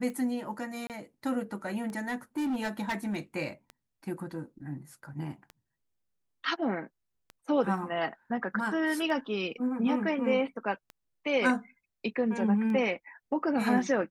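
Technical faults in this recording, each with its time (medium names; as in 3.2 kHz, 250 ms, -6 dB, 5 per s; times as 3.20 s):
tick 33 1/3 rpm -28 dBFS
0.87–0.90 s: dropout 28 ms
1.97–3.20 s: clipped -27.5 dBFS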